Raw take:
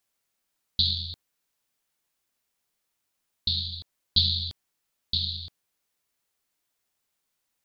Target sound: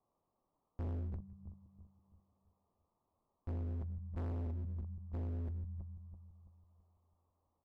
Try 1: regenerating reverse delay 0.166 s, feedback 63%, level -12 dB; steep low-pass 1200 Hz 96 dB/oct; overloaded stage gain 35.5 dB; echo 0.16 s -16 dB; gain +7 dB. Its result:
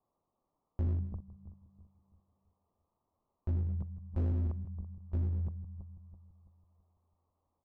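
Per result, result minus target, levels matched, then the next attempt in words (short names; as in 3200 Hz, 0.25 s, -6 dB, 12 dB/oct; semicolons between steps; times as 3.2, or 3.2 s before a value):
echo-to-direct +9.5 dB; overloaded stage: distortion -5 dB
regenerating reverse delay 0.166 s, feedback 63%, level -12 dB; steep low-pass 1200 Hz 96 dB/oct; overloaded stage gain 35.5 dB; echo 0.16 s -25.5 dB; gain +7 dB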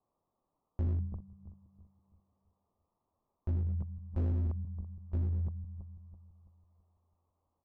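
overloaded stage: distortion -5 dB
regenerating reverse delay 0.166 s, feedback 63%, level -12 dB; steep low-pass 1200 Hz 96 dB/oct; overloaded stage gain 44.5 dB; echo 0.16 s -25.5 dB; gain +7 dB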